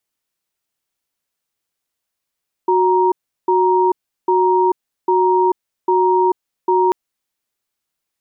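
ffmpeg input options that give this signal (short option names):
-f lavfi -i "aevalsrc='0.2*(sin(2*PI*368*t)+sin(2*PI*938*t))*clip(min(mod(t,0.8),0.44-mod(t,0.8))/0.005,0,1)':d=4.24:s=44100"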